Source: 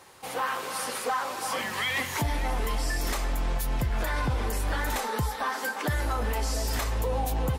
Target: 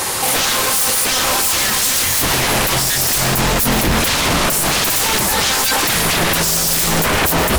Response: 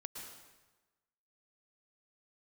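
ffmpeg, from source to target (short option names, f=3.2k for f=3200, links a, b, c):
-filter_complex "[0:a]aeval=exprs='0.119*sin(PI/2*5.01*val(0)/0.119)':c=same,highshelf=f=4.3k:g=11,bandreject=f=50:t=h:w=6,bandreject=f=100:t=h:w=6,bandreject=f=150:t=h:w=6,asplit=2[a][b];[b]lowshelf=f=200:g=10.5[c];[1:a]atrim=start_sample=2205[d];[c][d]afir=irnorm=-1:irlink=0,volume=-4.5dB[e];[a][e]amix=inputs=2:normalize=0,alimiter=limit=-16.5dB:level=0:latency=1,volume=8.5dB"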